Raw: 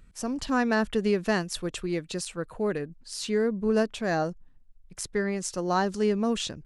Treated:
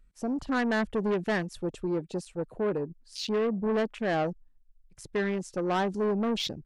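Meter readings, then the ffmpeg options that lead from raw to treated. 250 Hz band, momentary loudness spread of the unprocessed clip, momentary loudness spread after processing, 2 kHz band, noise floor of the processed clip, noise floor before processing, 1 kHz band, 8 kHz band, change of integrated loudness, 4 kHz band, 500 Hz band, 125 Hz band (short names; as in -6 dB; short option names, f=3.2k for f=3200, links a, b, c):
-2.0 dB, 9 LU, 8 LU, -2.0 dB, -61 dBFS, -55 dBFS, -2.0 dB, -10.5 dB, -2.0 dB, -1.5 dB, -1.5 dB, -1.5 dB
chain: -af "afwtdn=0.0158,asoftclip=type=tanh:threshold=-26dB,lowshelf=f=88:g=-9,volume=3.5dB"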